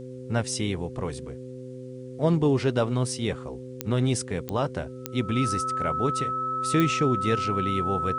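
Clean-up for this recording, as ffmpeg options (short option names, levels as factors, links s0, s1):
-af "adeclick=t=4,bandreject=f=127.8:t=h:w=4,bandreject=f=255.6:t=h:w=4,bandreject=f=383.4:t=h:w=4,bandreject=f=511.2:t=h:w=4,bandreject=f=1300:w=30,agate=range=0.0891:threshold=0.0282"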